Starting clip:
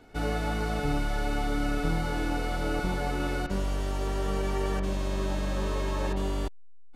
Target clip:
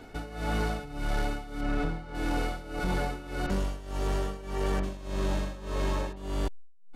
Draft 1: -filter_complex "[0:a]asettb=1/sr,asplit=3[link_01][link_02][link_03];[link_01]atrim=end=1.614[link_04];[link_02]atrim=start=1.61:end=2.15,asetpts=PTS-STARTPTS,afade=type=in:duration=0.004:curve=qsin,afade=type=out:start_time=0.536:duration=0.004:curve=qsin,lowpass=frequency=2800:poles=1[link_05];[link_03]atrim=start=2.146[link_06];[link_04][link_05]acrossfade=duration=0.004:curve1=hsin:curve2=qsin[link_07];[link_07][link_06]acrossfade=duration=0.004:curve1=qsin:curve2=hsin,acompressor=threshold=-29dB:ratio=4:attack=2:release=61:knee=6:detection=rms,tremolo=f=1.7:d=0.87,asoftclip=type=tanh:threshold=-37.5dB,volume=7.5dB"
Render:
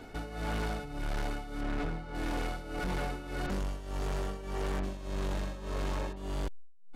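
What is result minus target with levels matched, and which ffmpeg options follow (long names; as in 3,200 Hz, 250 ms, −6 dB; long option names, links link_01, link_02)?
soft clipping: distortion +10 dB
-filter_complex "[0:a]asettb=1/sr,asplit=3[link_01][link_02][link_03];[link_01]atrim=end=1.614[link_04];[link_02]atrim=start=1.61:end=2.15,asetpts=PTS-STARTPTS,afade=type=in:duration=0.004:curve=qsin,afade=type=out:start_time=0.536:duration=0.004:curve=qsin,lowpass=frequency=2800:poles=1[link_05];[link_03]atrim=start=2.146[link_06];[link_04][link_05]acrossfade=duration=0.004:curve1=hsin:curve2=qsin[link_07];[link_07][link_06]acrossfade=duration=0.004:curve1=qsin:curve2=hsin,acompressor=threshold=-29dB:ratio=4:attack=2:release=61:knee=6:detection=rms,tremolo=f=1.7:d=0.87,asoftclip=type=tanh:threshold=-28.5dB,volume=7.5dB"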